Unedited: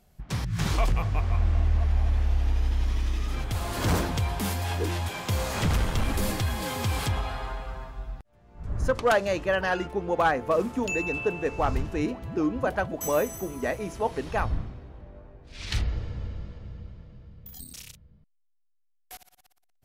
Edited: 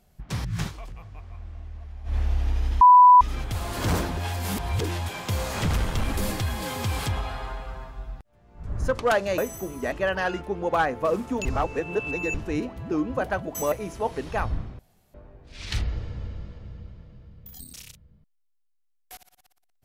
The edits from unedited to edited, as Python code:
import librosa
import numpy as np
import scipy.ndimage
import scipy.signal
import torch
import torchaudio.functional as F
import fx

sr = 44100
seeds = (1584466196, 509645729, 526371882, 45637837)

y = fx.edit(x, sr, fx.fade_down_up(start_s=0.6, length_s=1.56, db=-16.0, fade_s=0.12),
    fx.bleep(start_s=2.81, length_s=0.4, hz=992.0, db=-8.5),
    fx.reverse_span(start_s=4.17, length_s=0.64),
    fx.reverse_span(start_s=10.91, length_s=0.89),
    fx.move(start_s=13.18, length_s=0.54, to_s=9.38),
    fx.room_tone_fill(start_s=14.79, length_s=0.35), tone=tone)